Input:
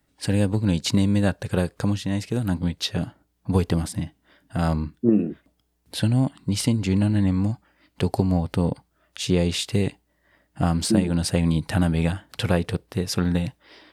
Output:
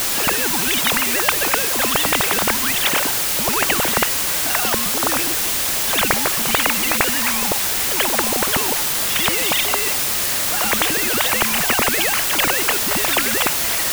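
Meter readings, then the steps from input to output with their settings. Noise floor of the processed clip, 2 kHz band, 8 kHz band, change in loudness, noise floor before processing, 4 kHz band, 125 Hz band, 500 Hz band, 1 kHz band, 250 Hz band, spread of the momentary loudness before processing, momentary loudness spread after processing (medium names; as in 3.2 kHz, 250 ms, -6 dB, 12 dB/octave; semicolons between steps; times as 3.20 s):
-20 dBFS, +17.5 dB, +18.0 dB, +8.0 dB, -70 dBFS, +13.5 dB, -12.5 dB, +3.0 dB, +13.5 dB, -6.0 dB, 9 LU, 2 LU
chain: formants replaced by sine waves; reverse echo 91 ms -16.5 dB; added noise white -44 dBFS; spectrum-flattening compressor 10:1; trim +2.5 dB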